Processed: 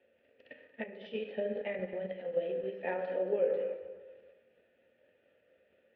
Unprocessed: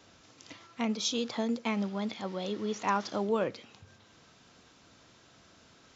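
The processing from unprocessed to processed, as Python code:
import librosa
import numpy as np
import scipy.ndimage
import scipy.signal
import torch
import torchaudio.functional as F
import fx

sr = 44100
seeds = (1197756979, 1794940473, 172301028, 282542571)

p1 = fx.pitch_heads(x, sr, semitones=-1.5)
p2 = fx.rev_fdn(p1, sr, rt60_s=1.6, lf_ratio=0.95, hf_ratio=0.5, size_ms=78.0, drr_db=1.0)
p3 = fx.transient(p2, sr, attack_db=11, sustain_db=7)
p4 = fx.vowel_filter(p3, sr, vowel='e')
p5 = fx.high_shelf(p4, sr, hz=2000.0, db=-5.0)
p6 = fx.level_steps(p5, sr, step_db=22)
p7 = p5 + (p6 * librosa.db_to_amplitude(0.0))
p8 = scipy.signal.sosfilt(scipy.signal.butter(4, 3200.0, 'lowpass', fs=sr, output='sos'), p7)
p9 = fx.low_shelf(p8, sr, hz=99.0, db=8.5)
y = p9 + fx.echo_single(p9, sr, ms=230, db=-15.0, dry=0)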